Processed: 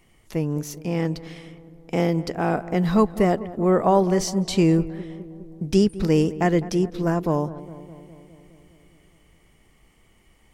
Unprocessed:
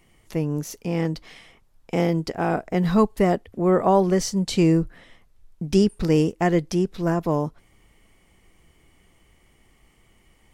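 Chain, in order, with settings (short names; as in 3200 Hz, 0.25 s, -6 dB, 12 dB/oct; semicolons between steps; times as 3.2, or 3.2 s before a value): darkening echo 0.206 s, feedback 69%, low-pass 1500 Hz, level -16 dB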